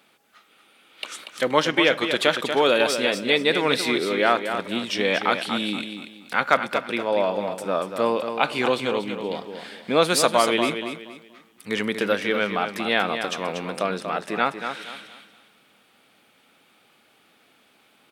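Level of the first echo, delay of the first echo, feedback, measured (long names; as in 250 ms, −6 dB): −8.0 dB, 237 ms, 30%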